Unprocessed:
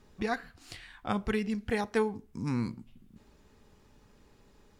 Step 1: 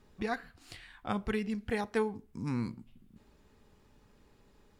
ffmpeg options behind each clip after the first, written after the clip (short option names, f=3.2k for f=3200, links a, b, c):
-af "equalizer=f=6k:w=2.1:g=-3,volume=-2.5dB"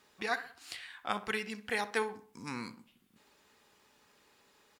-filter_complex "[0:a]highpass=f=1.4k:p=1,asplit=2[a][b];[b]adelay=63,lowpass=f=2.1k:p=1,volume=-13.5dB,asplit=2[c][d];[d]adelay=63,lowpass=f=2.1k:p=1,volume=0.46,asplit=2[e][f];[f]adelay=63,lowpass=f=2.1k:p=1,volume=0.46,asplit=2[g][h];[h]adelay=63,lowpass=f=2.1k:p=1,volume=0.46[i];[a][c][e][g][i]amix=inputs=5:normalize=0,volume=7dB"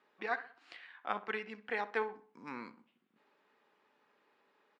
-filter_complex "[0:a]asplit=2[a][b];[b]aeval=exprs='sgn(val(0))*max(abs(val(0))-0.00596,0)':c=same,volume=-9dB[c];[a][c]amix=inputs=2:normalize=0,highpass=260,lowpass=2.2k,volume=-3.5dB"